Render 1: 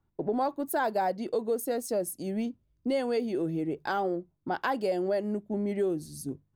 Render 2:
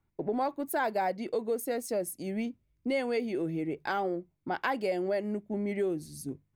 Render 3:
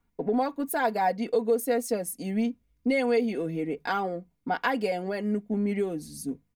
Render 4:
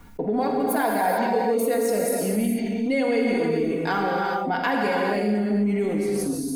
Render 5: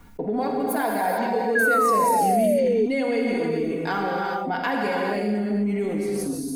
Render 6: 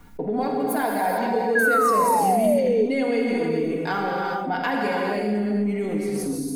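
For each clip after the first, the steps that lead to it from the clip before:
peaking EQ 2.2 kHz +9 dB 0.5 oct; trim -2 dB
comb 4.2 ms, depth 70%; trim +2.5 dB
gated-style reverb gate 470 ms flat, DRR -1.5 dB; level flattener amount 50%; trim -1.5 dB
painted sound fall, 1.55–2.86 s, 410–1700 Hz -19 dBFS; trim -1.5 dB
simulated room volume 1200 m³, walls mixed, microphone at 0.44 m

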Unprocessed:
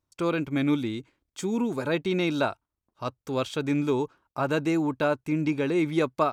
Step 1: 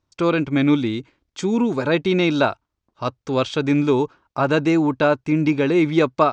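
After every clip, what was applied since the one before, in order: low-pass 6.4 kHz 24 dB/octave; trim +7.5 dB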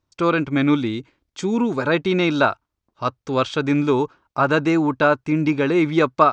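dynamic bell 1.3 kHz, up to +6 dB, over -34 dBFS, Q 1.6; trim -1 dB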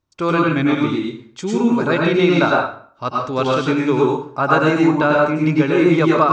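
reverberation RT60 0.50 s, pre-delay 87 ms, DRR -2.5 dB; trim -1 dB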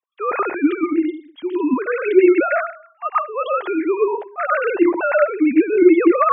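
formants replaced by sine waves; trim -1 dB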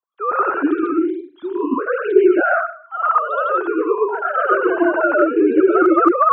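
ever faster or slower copies 111 ms, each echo +1 st, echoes 2; resonant high shelf 1.7 kHz -6.5 dB, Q 3; trim -2.5 dB

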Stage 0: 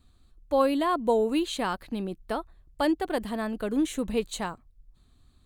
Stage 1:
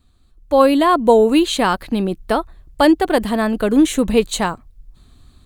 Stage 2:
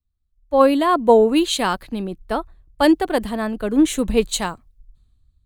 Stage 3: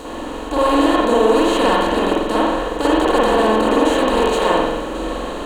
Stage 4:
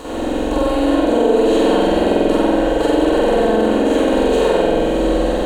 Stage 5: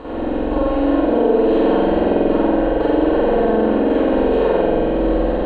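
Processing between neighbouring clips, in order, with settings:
level rider gain up to 10 dB; trim +3 dB
three bands expanded up and down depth 70%; trim -3.5 dB
spectral levelling over time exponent 0.2; spring tank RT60 1 s, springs 46 ms, chirp 75 ms, DRR -6.5 dB; trim -12.5 dB
compression, threshold -19 dBFS, peak gain reduction 10 dB; on a send: flutter echo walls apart 7.9 m, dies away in 1.1 s
distance through air 460 m

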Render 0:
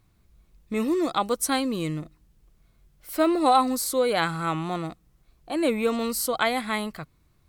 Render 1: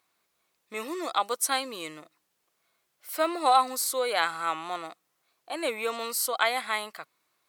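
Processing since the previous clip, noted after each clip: high-pass 650 Hz 12 dB/octave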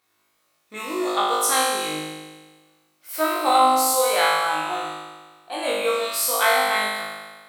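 flutter echo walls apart 3.3 m, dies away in 1.4 s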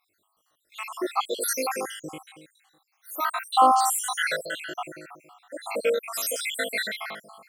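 random holes in the spectrogram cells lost 72%

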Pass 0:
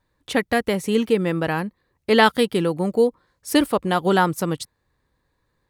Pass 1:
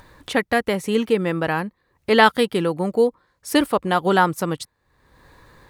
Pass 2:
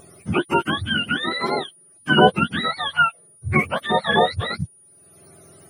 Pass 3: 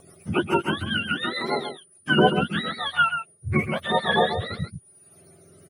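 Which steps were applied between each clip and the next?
peaking EQ 1.2 kHz +4 dB 2.5 oct; upward compressor, threshold -30 dBFS; trim -1.5 dB
spectrum inverted on a logarithmic axis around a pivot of 810 Hz; whistle 9.6 kHz -51 dBFS; trim +1.5 dB
rotary cabinet horn 7 Hz, later 1 Hz, at 1.96 s; delay 134 ms -8.5 dB; trim -1.5 dB

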